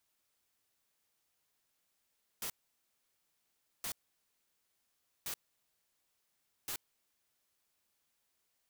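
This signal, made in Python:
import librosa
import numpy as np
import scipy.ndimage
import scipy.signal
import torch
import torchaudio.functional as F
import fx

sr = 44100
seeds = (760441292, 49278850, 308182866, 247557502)

y = fx.noise_burst(sr, seeds[0], colour='white', on_s=0.08, off_s=1.34, bursts=4, level_db=-39.5)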